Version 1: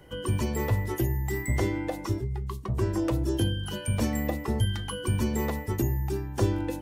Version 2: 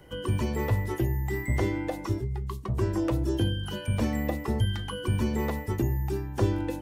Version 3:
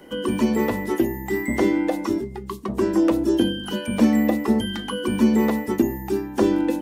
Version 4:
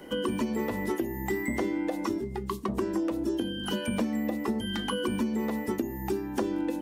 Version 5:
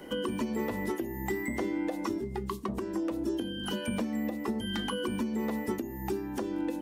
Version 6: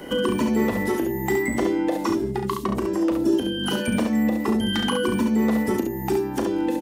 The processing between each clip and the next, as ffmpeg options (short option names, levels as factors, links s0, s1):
-filter_complex "[0:a]acrossover=split=3900[s0][s1];[s1]acompressor=threshold=0.00501:ratio=4:attack=1:release=60[s2];[s0][s2]amix=inputs=2:normalize=0"
-af "lowshelf=f=160:t=q:w=3:g=-12,volume=2.11"
-af "acompressor=threshold=0.0501:ratio=10"
-af "alimiter=limit=0.0794:level=0:latency=1:release=403"
-af "aecho=1:1:36|69:0.355|0.531,volume=2.66"